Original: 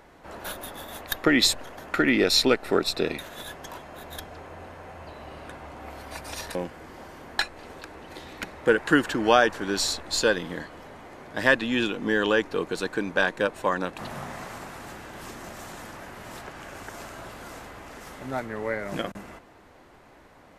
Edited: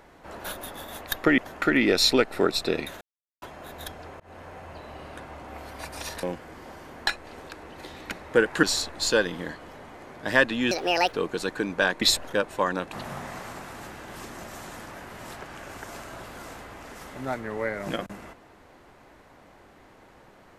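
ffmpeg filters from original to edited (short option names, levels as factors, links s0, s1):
-filter_complex "[0:a]asplit=10[s0][s1][s2][s3][s4][s5][s6][s7][s8][s9];[s0]atrim=end=1.382[s10];[s1]atrim=start=1.698:end=3.33,asetpts=PTS-STARTPTS,afade=t=out:st=1.628:d=0.004:c=hsin[s11];[s2]atrim=start=3.33:end=3.74,asetpts=PTS-STARTPTS,volume=0[s12];[s3]atrim=start=3.74:end=4.52,asetpts=PTS-STARTPTS,afade=t=in:d=0.004:c=hsin,afade=t=out:st=0.776:d=0.004:c=hsin[s13];[s4]atrim=start=4.52:end=8.952,asetpts=PTS-STARTPTS,afade=t=in:d=0.27:c=qsin[s14];[s5]atrim=start=9.738:end=11.824[s15];[s6]atrim=start=11.82:end=12.5,asetpts=PTS-STARTPTS,asetrate=72324,aresample=44100,atrim=end_sample=18285,asetpts=PTS-STARTPTS[s16];[s7]atrim=start=12.496:end=13.392[s17];[s8]atrim=start=1.378:end=1.702[s18];[s9]atrim=start=13.388[s19];[s11][s12][s13][s14]concat=n=4:v=0:a=1[s20];[s10][s20]acrossfade=d=0.004:c1=hsin:c2=hsin[s21];[s21][s15]acrossfade=d=0.004:c1=hsin:c2=hsin[s22];[s22][s16]acrossfade=d=0.004:c1=hsin:c2=hsin[s23];[s23][s17]acrossfade=d=0.004:c1=hsin:c2=hsin[s24];[s24][s18]acrossfade=d=0.004:c1=hsin:c2=hsin[s25];[s25][s19]acrossfade=d=0.004:c1=hsin:c2=hsin"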